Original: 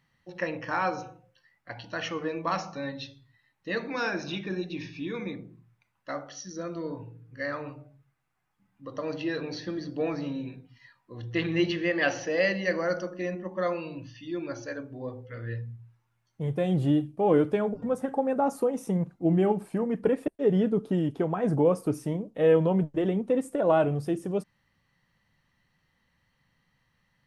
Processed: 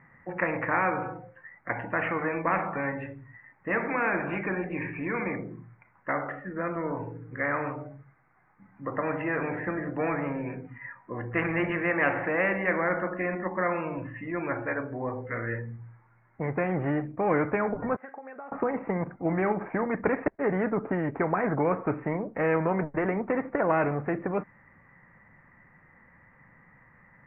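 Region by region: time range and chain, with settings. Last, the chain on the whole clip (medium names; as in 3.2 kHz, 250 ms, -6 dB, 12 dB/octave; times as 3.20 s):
17.96–18.52 s: band-pass filter 3.6 kHz, Q 2.8 + compression 10:1, threshold -51 dBFS
whole clip: steep low-pass 2.2 kHz 72 dB/octave; bass shelf 130 Hz -8.5 dB; spectrum-flattening compressor 2:1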